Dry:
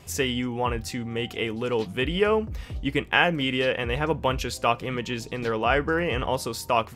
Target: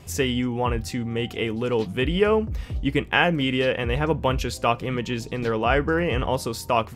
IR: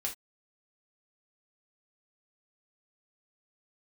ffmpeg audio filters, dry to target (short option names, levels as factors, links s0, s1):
-af "lowshelf=f=410:g=5"